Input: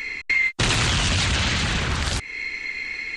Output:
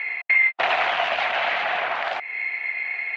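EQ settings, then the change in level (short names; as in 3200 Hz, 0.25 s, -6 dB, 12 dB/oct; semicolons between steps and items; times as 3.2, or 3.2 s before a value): resonant high-pass 700 Hz, resonance Q 6.8; ladder low-pass 2900 Hz, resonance 35%; +5.0 dB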